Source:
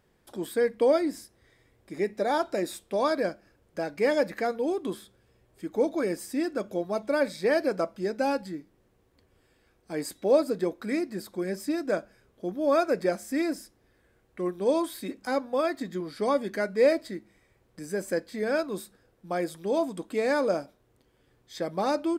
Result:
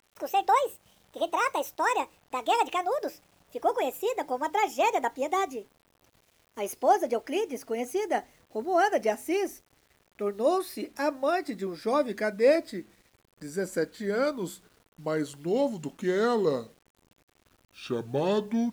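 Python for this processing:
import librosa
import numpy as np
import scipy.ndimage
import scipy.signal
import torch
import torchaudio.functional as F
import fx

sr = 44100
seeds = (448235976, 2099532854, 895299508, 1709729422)

y = fx.speed_glide(x, sr, from_pct=168, to_pct=69)
y = fx.quant_dither(y, sr, seeds[0], bits=10, dither='none')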